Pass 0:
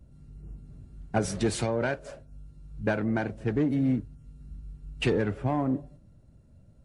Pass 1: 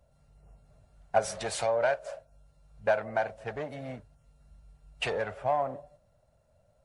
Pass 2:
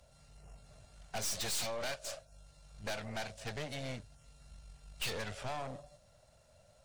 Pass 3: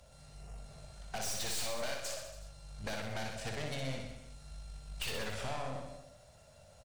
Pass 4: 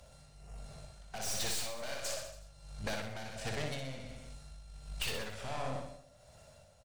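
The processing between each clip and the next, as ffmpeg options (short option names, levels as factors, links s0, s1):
-af "lowshelf=f=440:t=q:w=3:g=-12,volume=0.891"
-filter_complex "[0:a]equalizer=f=5200:w=0.35:g=13,acrossover=split=210|3000[s0][s1][s2];[s1]acompressor=threshold=0.00316:ratio=2[s3];[s0][s3][s2]amix=inputs=3:normalize=0,aeval=exprs='(tanh(100*val(0)+0.7)-tanh(0.7))/100':c=same,volume=1.78"
-filter_complex "[0:a]acompressor=threshold=0.01:ratio=6,asplit=2[s0][s1];[s1]aecho=0:1:60|126|198.6|278.5|366.3:0.631|0.398|0.251|0.158|0.1[s2];[s0][s2]amix=inputs=2:normalize=0,volume=1.5"
-af "tremolo=f=1.4:d=0.58,volume=1.33"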